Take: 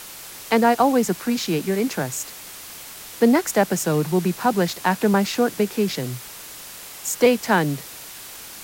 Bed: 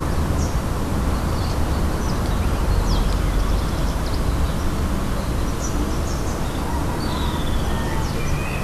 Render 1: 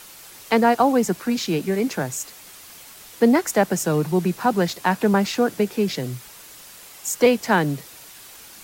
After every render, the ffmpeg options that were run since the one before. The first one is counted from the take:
-af "afftdn=nr=6:nf=-39"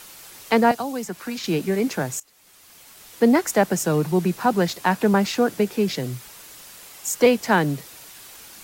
-filter_complex "[0:a]asettb=1/sr,asplit=3[a][b][c];[a]atrim=end=0.714[d];[b]atrim=start=0.71:end=1.44,asetpts=PTS-STARTPTS,afade=t=in:d=0.004:c=qsin,afade=t=out:st=0.726:d=0.004:c=qsin,acrossover=split=230|690|3100[e][f][g][h];[e]acompressor=threshold=-38dB:ratio=3[i];[f]acompressor=threshold=-35dB:ratio=3[j];[g]acompressor=threshold=-36dB:ratio=3[k];[h]acompressor=threshold=-38dB:ratio=3[l];[i][j][k][l]amix=inputs=4:normalize=0[m];[c]atrim=start=1.436[n];[d][m]acrossfade=d=0.004:c1=hsin:c2=qsin[o];[o][n]acrossfade=d=0.004:c1=qsin:c2=hsin,asplit=2[p][q];[p]atrim=end=2.2,asetpts=PTS-STARTPTS,afade=t=out:st=2.196:d=0.004:c=hsin:silence=0.0749894[r];[q]atrim=start=2.2,asetpts=PTS-STARTPTS,afade=t=in:d=1.14:silence=0.0749894[s];[r][s]concat=n=2:v=0:a=1"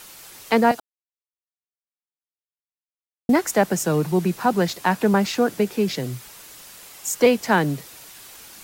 -filter_complex "[0:a]asplit=3[a][b][c];[a]atrim=end=0.8,asetpts=PTS-STARTPTS,afade=t=out:st=0.796:d=0.004:c=hsin[d];[b]atrim=start=0.8:end=3.29,asetpts=PTS-STARTPTS,volume=0[e];[c]atrim=start=3.29,asetpts=PTS-STARTPTS,afade=t=in:d=0.004:c=hsin[f];[d][e][f]concat=n=3:v=0:a=1"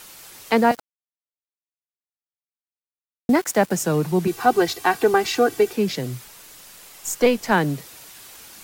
-filter_complex "[0:a]asettb=1/sr,asplit=3[a][b][c];[a]atrim=end=0.584[d];[b]atrim=start=0.58:end=3.76,asetpts=PTS-STARTPTS,afade=t=in:d=0.004:c=qsin,afade=t=out:st=3.176:d=0.004:c=qsin,aeval=exprs='val(0)*gte(abs(val(0)),0.0178)':c=same[e];[c]atrim=start=3.756[f];[d][e]acrossfade=d=0.004:c1=hsin:c2=qsin[g];[g][f]acrossfade=d=0.004:c1=qsin:c2=hsin,asettb=1/sr,asplit=3[h][i][j];[h]atrim=end=4.274[k];[i]atrim=start=4.27:end=5.73,asetpts=PTS-STARTPTS,afade=t=in:d=0.004:c=qsin,afade=t=out:st=1.456:d=0.004:c=qsin,aecho=1:1:2.6:0.89,atrim=end_sample=64386[l];[j]atrim=start=5.726[m];[k][l]acrossfade=d=0.004:c1=hsin:c2=qsin[n];[n][m]acrossfade=d=0.004:c1=qsin:c2=hsin,asettb=1/sr,asplit=3[o][p][q];[o]atrim=end=6.244[r];[p]atrim=start=6.24:end=7.52,asetpts=PTS-STARTPTS,afade=t=in:d=0.004:c=qsin,afade=t=out:st=1.276:d=0.004:c=qsin,aeval=exprs='if(lt(val(0),0),0.708*val(0),val(0))':c=same[s];[q]atrim=start=7.516[t];[r][s]acrossfade=d=0.004:c1=hsin:c2=qsin[u];[u][t]acrossfade=d=0.004:c1=qsin:c2=hsin"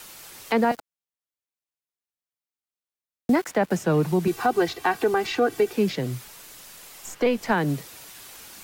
-filter_complex "[0:a]acrossover=split=320|1200|3700[a][b][c][d];[d]acompressor=threshold=-41dB:ratio=6[e];[a][b][c][e]amix=inputs=4:normalize=0,alimiter=limit=-12dB:level=0:latency=1:release=163"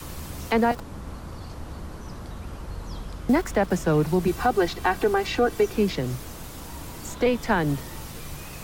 -filter_complex "[1:a]volume=-16dB[a];[0:a][a]amix=inputs=2:normalize=0"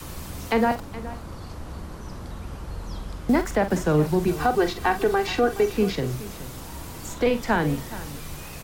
-filter_complex "[0:a]asplit=2[a][b];[b]adelay=46,volume=-10.5dB[c];[a][c]amix=inputs=2:normalize=0,aecho=1:1:421:0.158"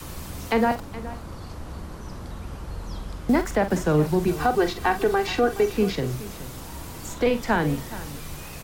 -af anull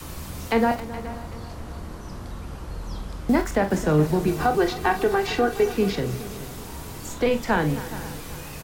-filter_complex "[0:a]asplit=2[a][b];[b]adelay=26,volume=-11.5dB[c];[a][c]amix=inputs=2:normalize=0,aecho=1:1:267|534|801|1068|1335|1602:0.158|0.0935|0.0552|0.0326|0.0192|0.0113"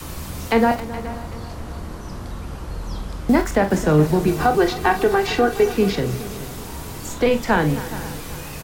-af "volume=4dB"

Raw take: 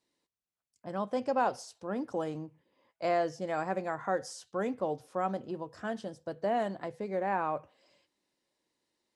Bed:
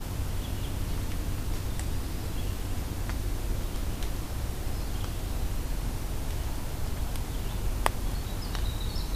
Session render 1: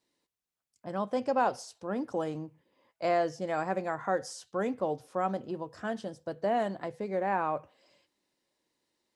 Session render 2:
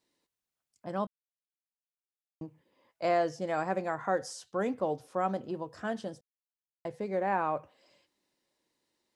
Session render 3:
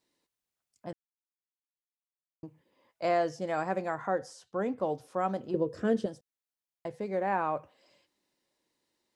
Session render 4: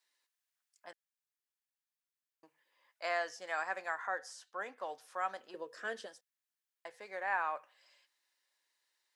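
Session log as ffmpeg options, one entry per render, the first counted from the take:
-af "volume=1.5dB"
-filter_complex "[0:a]asplit=5[a][b][c][d][e];[a]atrim=end=1.07,asetpts=PTS-STARTPTS,afade=t=out:st=1.066:d=0.004:c=hsin[f];[b]atrim=start=1.07:end=2.41,asetpts=PTS-STARTPTS,volume=0[g];[c]atrim=start=2.41:end=6.21,asetpts=PTS-STARTPTS,afade=t=in:d=0.004:c=hsin,afade=t=out:st=3.796:d=0.004:c=hsin[h];[d]atrim=start=6.21:end=6.85,asetpts=PTS-STARTPTS,volume=0[i];[e]atrim=start=6.85,asetpts=PTS-STARTPTS,afade=t=in:d=0.004:c=hsin[j];[f][g][h][i][j]concat=n=5:v=0:a=1"
-filter_complex "[0:a]asettb=1/sr,asplit=3[a][b][c];[a]atrim=end=4.074[d];[b]atrim=start=4.07:end=4.8,asetpts=PTS-STARTPTS,afade=t=in:d=0.004:c=qsin,afade=t=out:st=0.726:d=0.004:c=qsin,highshelf=f=2.4k:g=-8.5[e];[c]atrim=start=4.796[f];[d][e]acrossfade=d=0.004:c1=hsin:c2=qsin[g];[g][f]acrossfade=d=0.004:c1=qsin:c2=hsin,asettb=1/sr,asplit=3[h][i][j];[h]atrim=end=5.544[k];[i]atrim=start=5.54:end=6.06,asetpts=PTS-STARTPTS,afade=t=in:d=0.004:c=qsin,afade=t=out:st=0.516:d=0.004:c=qsin,lowshelf=f=610:t=q:w=3:g=7.5[l];[j]atrim=start=6.056[m];[k][l]acrossfade=d=0.004:c1=hsin:c2=qsin[n];[n][m]acrossfade=d=0.004:c1=qsin:c2=hsin,asplit=3[o][p][q];[o]atrim=end=0.93,asetpts=PTS-STARTPTS,afade=t=out:st=0.926:d=0.004:c=hsin[r];[p]atrim=start=0.93:end=2.43,asetpts=PTS-STARTPTS,volume=0[s];[q]atrim=start=2.43,asetpts=PTS-STARTPTS,afade=t=in:d=0.004:c=hsin[t];[r][s][t]concat=n=3:v=0:a=1"
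-af "highpass=1.1k,equalizer=f=1.7k:w=4.4:g=5.5"

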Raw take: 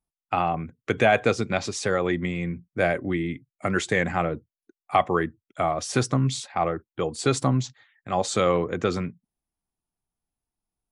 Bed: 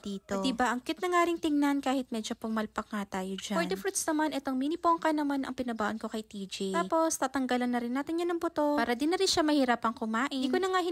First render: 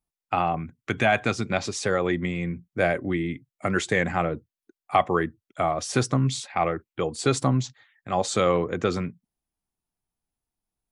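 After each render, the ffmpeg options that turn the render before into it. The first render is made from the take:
-filter_complex "[0:a]asettb=1/sr,asplit=3[a][b][c];[a]atrim=end=0.594[d];[b]atrim=start=0.59:end=1.44,asetpts=PTS-STARTPTS,afade=t=in:d=0.004:c=qsin,afade=t=out:st=0.846:d=0.004:c=qsin,equalizer=f=480:t=o:w=0.52:g=-10[e];[c]atrim=start=1.436[f];[d][e]acrossfade=d=0.004:c1=hsin:c2=qsin[g];[g][f]acrossfade=d=0.004:c1=qsin:c2=hsin,asettb=1/sr,asplit=3[h][i][j];[h]atrim=end=6.464[k];[i]atrim=start=6.46:end=7,asetpts=PTS-STARTPTS,afade=t=in:d=0.004:c=qsin,afade=t=out:st=0.536:d=0.004:c=qsin,equalizer=f=2.3k:t=o:w=0.77:g=6[l];[j]atrim=start=6.996[m];[k][l]acrossfade=d=0.004:c1=hsin:c2=qsin[n];[n][m]acrossfade=d=0.004:c1=qsin:c2=hsin"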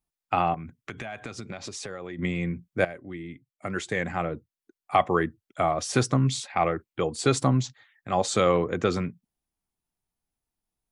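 -filter_complex "[0:a]asettb=1/sr,asplit=3[a][b][c];[a]atrim=end=0.544[d];[b]atrim=start=0.54:end=2.19,asetpts=PTS-STARTPTS,afade=t=in:d=0.004:c=qsin,afade=t=out:st=1.646:d=0.004:c=qsin,acompressor=threshold=-33dB:ratio=8:attack=3.2:release=140:knee=1:detection=peak[e];[c]atrim=start=2.186[f];[d][e]acrossfade=d=0.004:c1=hsin:c2=qsin[g];[g][f]acrossfade=d=0.004:c1=qsin:c2=hsin,asplit=2[h][i];[h]atrim=end=2.85,asetpts=PTS-STARTPTS,afade=t=out:st=2.846:d=0.004:c=hsin:silence=0.158489[j];[i]atrim=start=2.85,asetpts=PTS-STARTPTS,afade=t=in:d=2.39:silence=0.158489[k];[j][k]concat=n=2:v=0:a=1"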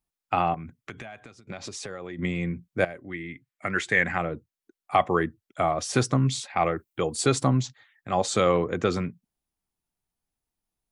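-filter_complex "[0:a]asettb=1/sr,asplit=3[a][b][c];[a]atrim=end=3.084[d];[b]atrim=start=3.08:end=4.18,asetpts=PTS-STARTPTS,afade=t=in:d=0.004:c=qsin,afade=t=out:st=1.096:d=0.004:c=qsin,equalizer=f=1.9k:t=o:w=1.1:g=10[e];[c]atrim=start=4.176[f];[d][e]acrossfade=d=0.004:c1=hsin:c2=qsin[g];[g][f]acrossfade=d=0.004:c1=qsin:c2=hsin,asettb=1/sr,asplit=3[h][i][j];[h]atrim=end=6.584[k];[i]atrim=start=6.58:end=7.26,asetpts=PTS-STARTPTS,afade=t=in:d=0.004:c=qsin,afade=t=out:st=0.676:d=0.004:c=qsin,highshelf=f=8k:g=11.5[l];[j]atrim=start=7.256[m];[k][l]acrossfade=d=0.004:c1=hsin:c2=qsin[n];[n][m]acrossfade=d=0.004:c1=qsin:c2=hsin,asplit=2[o][p];[o]atrim=end=1.47,asetpts=PTS-STARTPTS,afade=t=out:st=0.77:d=0.7:silence=0.0841395[q];[p]atrim=start=1.47,asetpts=PTS-STARTPTS,afade=t=in:d=0.004:c=hsin:silence=0.0841395[r];[q][r]concat=n=2:v=0:a=1"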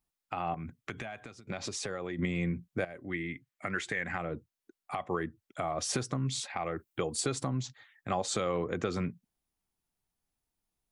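-af "acompressor=threshold=-27dB:ratio=4,alimiter=limit=-19.5dB:level=0:latency=1:release=236"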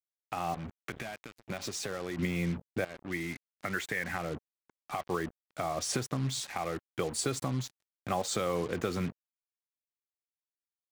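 -af "acrusher=bits=6:mix=0:aa=0.5"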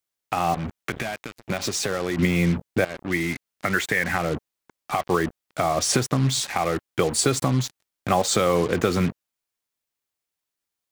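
-af "volume=11dB"

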